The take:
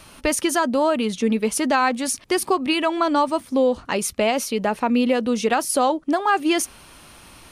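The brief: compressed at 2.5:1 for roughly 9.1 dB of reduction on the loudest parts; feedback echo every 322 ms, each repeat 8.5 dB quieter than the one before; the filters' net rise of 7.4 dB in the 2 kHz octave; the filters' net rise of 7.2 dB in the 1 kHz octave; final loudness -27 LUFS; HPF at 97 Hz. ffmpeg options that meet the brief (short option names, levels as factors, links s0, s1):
-af "highpass=97,equalizer=f=1000:t=o:g=7.5,equalizer=f=2000:t=o:g=7,acompressor=threshold=0.0794:ratio=2.5,aecho=1:1:322|644|966|1288:0.376|0.143|0.0543|0.0206,volume=0.631"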